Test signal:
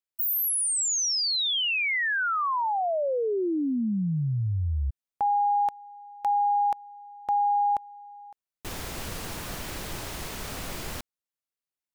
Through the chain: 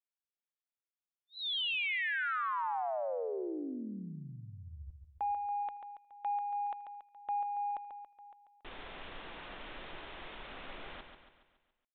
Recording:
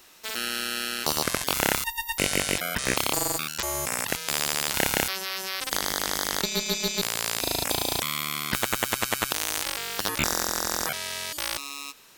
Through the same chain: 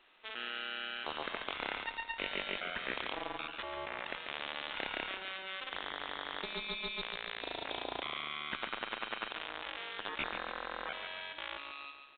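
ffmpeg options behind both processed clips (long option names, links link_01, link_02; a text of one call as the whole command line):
ffmpeg -i in.wav -af "equalizer=frequency=100:width=0.56:gain=-15,aresample=8000,asoftclip=type=tanh:threshold=-16dB,aresample=44100,aecho=1:1:140|280|420|560|700|840:0.422|0.211|0.105|0.0527|0.0264|0.0132,volume=-8dB" out.wav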